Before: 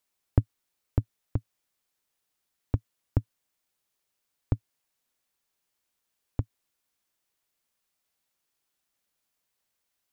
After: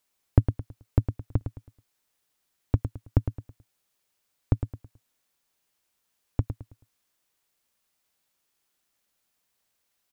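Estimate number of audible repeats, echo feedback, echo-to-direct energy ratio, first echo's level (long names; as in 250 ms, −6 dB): 3, 33%, −8.5 dB, −9.0 dB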